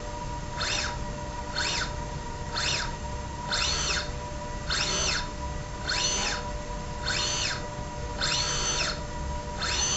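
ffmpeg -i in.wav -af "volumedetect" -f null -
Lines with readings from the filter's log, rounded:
mean_volume: -30.3 dB
max_volume: -13.5 dB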